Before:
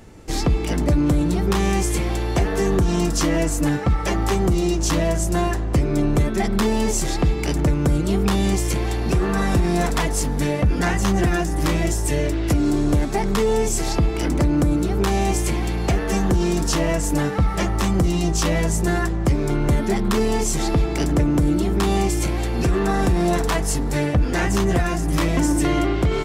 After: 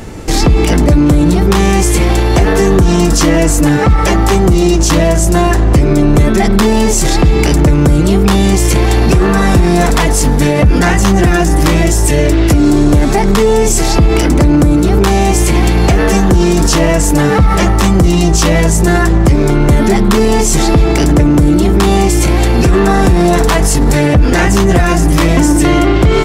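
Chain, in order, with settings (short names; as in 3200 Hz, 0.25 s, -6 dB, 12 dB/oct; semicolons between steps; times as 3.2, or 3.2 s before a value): maximiser +18.5 dB; gain -1 dB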